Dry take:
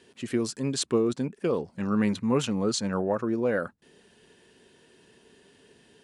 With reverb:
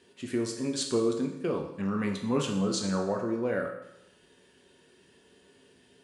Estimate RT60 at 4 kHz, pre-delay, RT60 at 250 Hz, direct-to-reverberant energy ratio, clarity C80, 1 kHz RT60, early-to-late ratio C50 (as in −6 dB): 0.85 s, 5 ms, 0.85 s, 1.5 dB, 9.0 dB, 0.85 s, 6.5 dB